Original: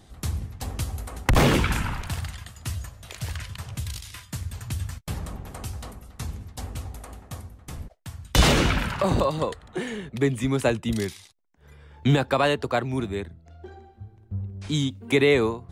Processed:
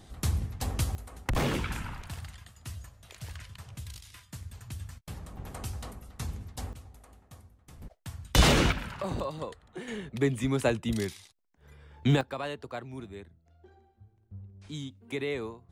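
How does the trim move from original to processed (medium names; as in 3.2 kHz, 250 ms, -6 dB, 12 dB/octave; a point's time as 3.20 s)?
0 dB
from 0.95 s -10 dB
from 5.37 s -3 dB
from 6.73 s -14 dB
from 7.82 s -3 dB
from 8.72 s -11 dB
from 9.88 s -4 dB
from 12.21 s -14 dB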